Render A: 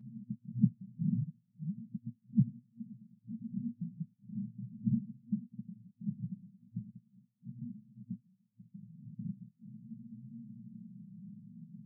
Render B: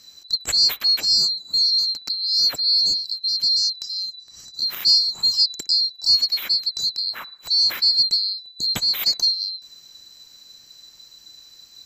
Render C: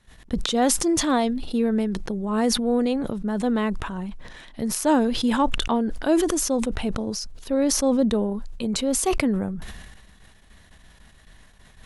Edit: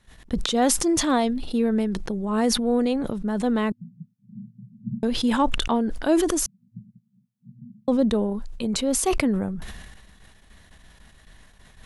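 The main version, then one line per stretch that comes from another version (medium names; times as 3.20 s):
C
3.72–5.03 s: from A
6.46–7.88 s: from A
not used: B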